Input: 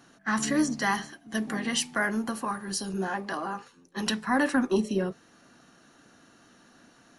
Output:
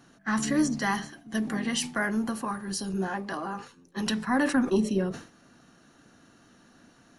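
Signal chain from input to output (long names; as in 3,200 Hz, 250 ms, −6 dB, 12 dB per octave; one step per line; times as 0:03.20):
low-shelf EQ 220 Hz +7 dB
level that may fall only so fast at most 130 dB per second
level −2 dB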